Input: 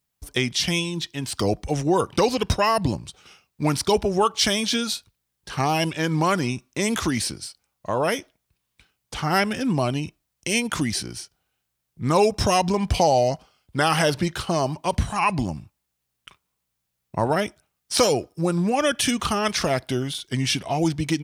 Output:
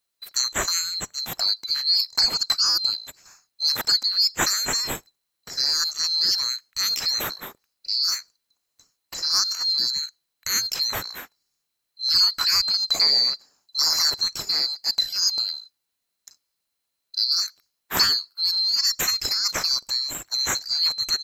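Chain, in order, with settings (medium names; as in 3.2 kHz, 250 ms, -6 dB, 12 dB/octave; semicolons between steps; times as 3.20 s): split-band scrambler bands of 4 kHz; trim -1 dB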